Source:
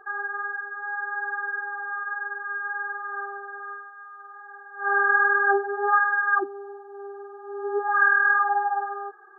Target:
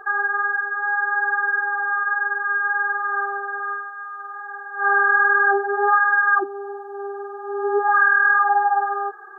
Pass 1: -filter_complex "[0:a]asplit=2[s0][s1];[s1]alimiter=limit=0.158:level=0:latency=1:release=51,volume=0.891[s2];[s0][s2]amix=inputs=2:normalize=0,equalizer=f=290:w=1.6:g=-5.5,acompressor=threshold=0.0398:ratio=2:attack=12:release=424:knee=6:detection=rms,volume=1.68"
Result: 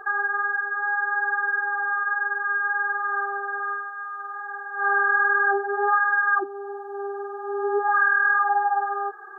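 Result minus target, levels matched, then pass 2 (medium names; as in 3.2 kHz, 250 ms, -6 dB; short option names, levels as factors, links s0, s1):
compression: peak gain reduction +4 dB
-filter_complex "[0:a]asplit=2[s0][s1];[s1]alimiter=limit=0.158:level=0:latency=1:release=51,volume=0.891[s2];[s0][s2]amix=inputs=2:normalize=0,equalizer=f=290:w=1.6:g=-5.5,acompressor=threshold=0.0944:ratio=2:attack=12:release=424:knee=6:detection=rms,volume=1.68"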